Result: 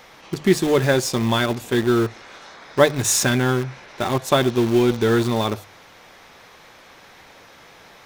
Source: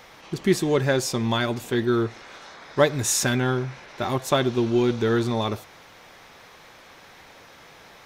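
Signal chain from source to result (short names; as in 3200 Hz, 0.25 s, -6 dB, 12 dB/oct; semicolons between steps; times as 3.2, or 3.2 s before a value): notches 50/100/150 Hz; in parallel at -10.5 dB: bit-crush 4-bit; on the sum: gain +1.5 dB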